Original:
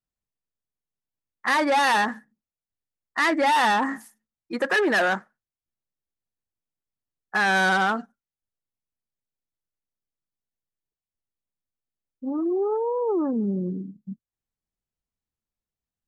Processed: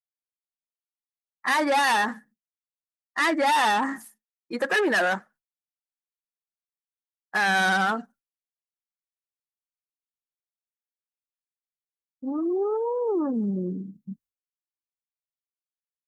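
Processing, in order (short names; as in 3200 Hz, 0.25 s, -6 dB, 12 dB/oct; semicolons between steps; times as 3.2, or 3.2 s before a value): bin magnitudes rounded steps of 15 dB; expander -50 dBFS; high shelf 8900 Hz +7 dB; gain -1 dB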